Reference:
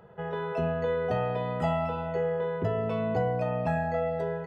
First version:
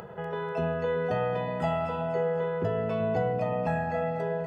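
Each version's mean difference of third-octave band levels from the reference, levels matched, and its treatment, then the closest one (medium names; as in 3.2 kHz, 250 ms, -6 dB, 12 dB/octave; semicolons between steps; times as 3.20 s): 2.0 dB: bass shelf 75 Hz -7.5 dB; band-stop 3.8 kHz, Q 14; upward compressor, threshold -34 dBFS; on a send: two-band feedback delay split 780 Hz, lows 370 ms, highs 244 ms, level -11 dB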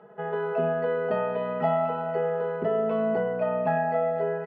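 4.5 dB: high-pass 240 Hz 12 dB/octave; distance through air 410 m; comb 4.7 ms, depth 74%; feedback echo behind a high-pass 254 ms, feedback 76%, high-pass 1.8 kHz, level -14 dB; trim +2.5 dB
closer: first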